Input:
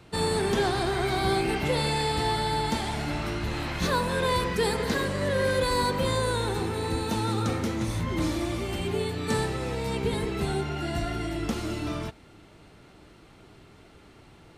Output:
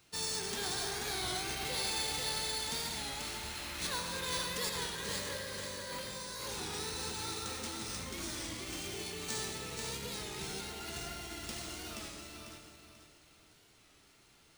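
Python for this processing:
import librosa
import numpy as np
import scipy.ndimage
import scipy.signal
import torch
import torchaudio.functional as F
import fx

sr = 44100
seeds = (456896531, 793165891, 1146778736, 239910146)

y = F.preemphasis(torch.from_numpy(x), 0.9).numpy()
y = fx.over_compress(y, sr, threshold_db=-44.0, ratio=-1.0, at=(4.7, 7.2))
y = fx.echo_feedback(y, sr, ms=487, feedback_pct=32, wet_db=-4.5)
y = fx.rev_freeverb(y, sr, rt60_s=1.7, hf_ratio=0.5, predelay_ms=50, drr_db=3.5)
y = np.repeat(y[::3], 3)[:len(y)]
y = fx.record_warp(y, sr, rpm=33.33, depth_cents=100.0)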